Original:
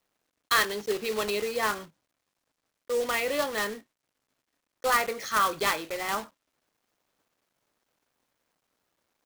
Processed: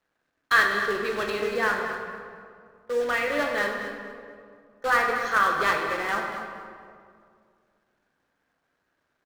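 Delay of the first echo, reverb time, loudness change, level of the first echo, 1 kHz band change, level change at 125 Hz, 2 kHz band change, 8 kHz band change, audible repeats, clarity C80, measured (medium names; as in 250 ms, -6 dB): 234 ms, 2.2 s, +3.0 dB, -11.5 dB, +3.5 dB, +3.5 dB, +6.5 dB, -7.0 dB, 2, 4.0 dB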